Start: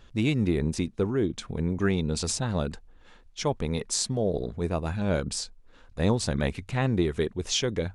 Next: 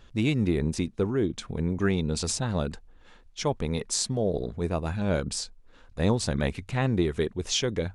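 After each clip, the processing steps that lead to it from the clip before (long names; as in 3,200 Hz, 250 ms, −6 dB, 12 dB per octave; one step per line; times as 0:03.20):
no processing that can be heard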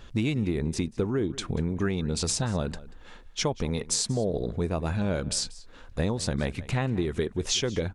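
downward compressor 5 to 1, threshold −30 dBFS, peak gain reduction 11.5 dB
slap from a distant wall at 32 metres, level −18 dB
level +6 dB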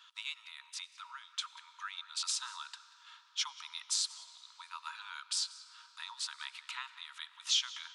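Chebyshev high-pass with heavy ripple 920 Hz, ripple 9 dB
on a send at −15.5 dB: convolution reverb RT60 5.5 s, pre-delay 45 ms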